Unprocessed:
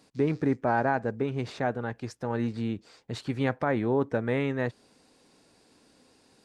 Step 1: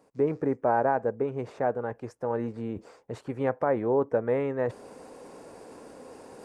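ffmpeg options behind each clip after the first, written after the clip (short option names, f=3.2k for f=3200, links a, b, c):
-af "equalizer=f=500:t=o:w=1:g=10,equalizer=f=1k:t=o:w=1:g=6,equalizer=f=4k:t=o:w=1:g=-11,areverse,acompressor=mode=upward:threshold=-26dB:ratio=2.5,areverse,volume=-6dB"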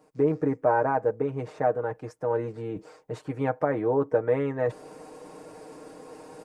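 -af "aecho=1:1:6.5:0.69"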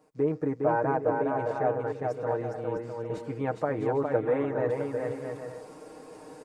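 -af "aecho=1:1:410|656|803.6|892.2|945.3:0.631|0.398|0.251|0.158|0.1,volume=-3.5dB"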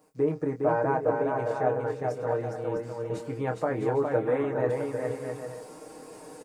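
-filter_complex "[0:a]highshelf=f=7.2k:g=10.5,asplit=2[a][b];[b]adelay=24,volume=-7dB[c];[a][c]amix=inputs=2:normalize=0"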